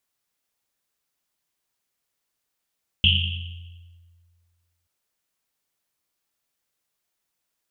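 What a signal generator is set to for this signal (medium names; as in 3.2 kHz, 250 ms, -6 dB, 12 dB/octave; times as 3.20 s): Risset drum length 1.83 s, pitch 86 Hz, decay 1.94 s, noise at 3 kHz, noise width 610 Hz, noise 50%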